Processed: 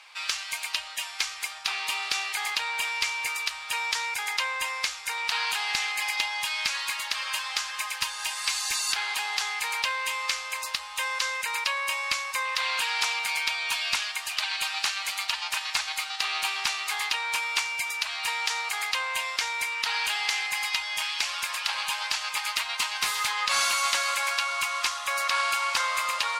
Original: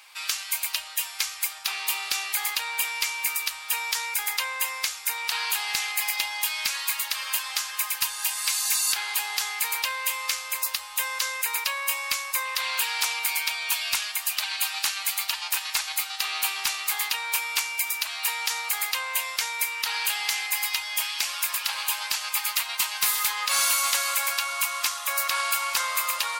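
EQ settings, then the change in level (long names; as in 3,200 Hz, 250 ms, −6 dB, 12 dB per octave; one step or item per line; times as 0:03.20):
high-frequency loss of the air 71 metres
+2.0 dB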